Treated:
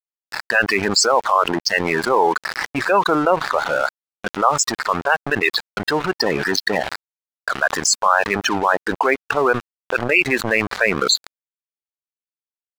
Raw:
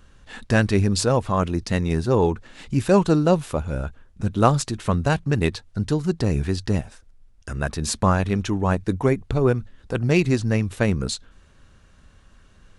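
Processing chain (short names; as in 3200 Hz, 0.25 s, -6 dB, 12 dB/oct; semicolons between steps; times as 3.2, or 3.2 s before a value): Wiener smoothing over 15 samples; transient shaper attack -7 dB, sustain 0 dB; HPF 1000 Hz 12 dB/oct; gate -57 dBFS, range -7 dB; loudest bins only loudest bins 32; AGC gain up to 14.5 dB; crossover distortion -41.5 dBFS; fast leveller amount 70%; gain -1 dB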